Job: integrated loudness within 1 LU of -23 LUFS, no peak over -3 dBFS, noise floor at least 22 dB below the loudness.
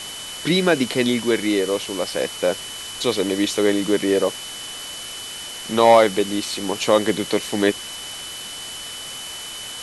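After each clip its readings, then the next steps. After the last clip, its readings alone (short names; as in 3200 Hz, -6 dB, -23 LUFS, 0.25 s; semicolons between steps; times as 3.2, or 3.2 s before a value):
steady tone 3000 Hz; tone level -34 dBFS; noise floor -34 dBFS; noise floor target -44 dBFS; loudness -21.5 LUFS; peak -2.0 dBFS; loudness target -23.0 LUFS
-> notch 3000 Hz, Q 30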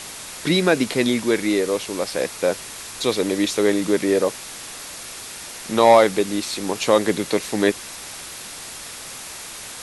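steady tone none; noise floor -36 dBFS; noise floor target -43 dBFS
-> denoiser 7 dB, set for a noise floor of -36 dBFS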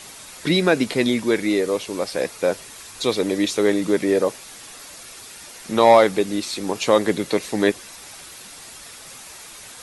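noise floor -41 dBFS; noise floor target -43 dBFS
-> denoiser 6 dB, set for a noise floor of -41 dBFS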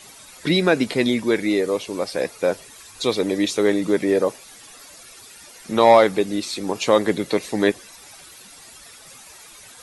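noise floor -45 dBFS; loudness -20.5 LUFS; peak -2.0 dBFS; loudness target -23.0 LUFS
-> gain -2.5 dB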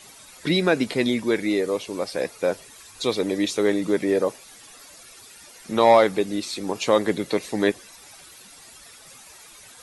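loudness -23.0 LUFS; peak -4.5 dBFS; noise floor -47 dBFS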